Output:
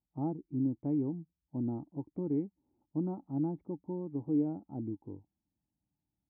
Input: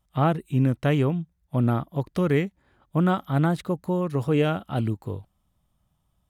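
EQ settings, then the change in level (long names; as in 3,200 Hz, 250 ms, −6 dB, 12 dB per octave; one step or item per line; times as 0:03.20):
formant resonators in series u
high-pass filter 54 Hz
−3.0 dB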